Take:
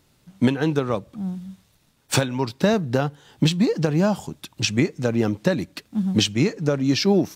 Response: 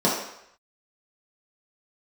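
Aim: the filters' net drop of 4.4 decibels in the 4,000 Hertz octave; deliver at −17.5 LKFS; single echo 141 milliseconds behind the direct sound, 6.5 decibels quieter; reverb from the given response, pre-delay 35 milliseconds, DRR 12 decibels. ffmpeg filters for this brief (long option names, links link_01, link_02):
-filter_complex "[0:a]equalizer=frequency=4000:width_type=o:gain=-6,aecho=1:1:141:0.473,asplit=2[link_01][link_02];[1:a]atrim=start_sample=2205,adelay=35[link_03];[link_02][link_03]afir=irnorm=-1:irlink=0,volume=-29dB[link_04];[link_01][link_04]amix=inputs=2:normalize=0,volume=4dB"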